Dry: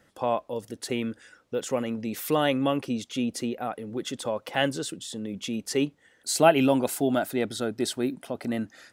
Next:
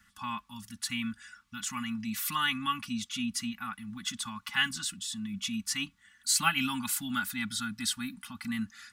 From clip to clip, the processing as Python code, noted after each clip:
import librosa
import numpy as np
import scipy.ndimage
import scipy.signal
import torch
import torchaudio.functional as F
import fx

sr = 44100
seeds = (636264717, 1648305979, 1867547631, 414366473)

y = scipy.signal.sosfilt(scipy.signal.ellip(3, 1.0, 80, [200.0, 1100.0], 'bandstop', fs=sr, output='sos'), x)
y = y + 0.77 * np.pad(y, (int(3.5 * sr / 1000.0), 0))[:len(y)]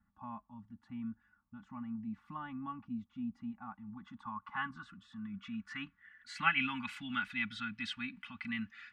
y = fx.filter_sweep_lowpass(x, sr, from_hz=660.0, to_hz=2500.0, start_s=3.22, end_s=7.01, q=2.9)
y = y * 10.0 ** (-6.5 / 20.0)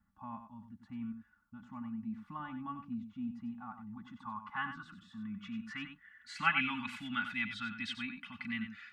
y = x + 10.0 ** (-9.0 / 20.0) * np.pad(x, (int(93 * sr / 1000.0), 0))[:len(x)]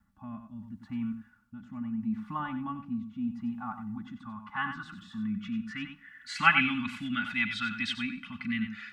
y = fx.rotary(x, sr, hz=0.75)
y = fx.rev_schroeder(y, sr, rt60_s=1.0, comb_ms=29, drr_db=19.5)
y = y * 10.0 ** (9.0 / 20.0)